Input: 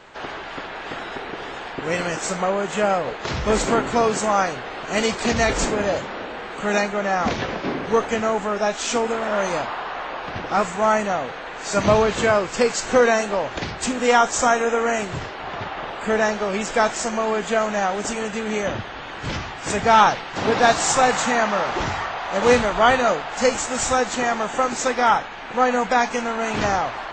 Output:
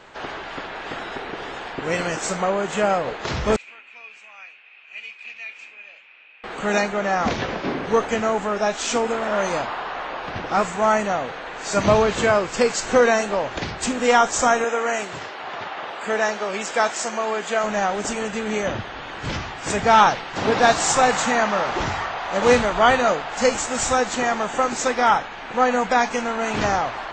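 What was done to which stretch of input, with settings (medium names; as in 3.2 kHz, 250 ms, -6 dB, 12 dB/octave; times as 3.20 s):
3.56–6.44 s: band-pass filter 2.5 kHz, Q 14
14.64–17.64 s: high-pass 450 Hz 6 dB/octave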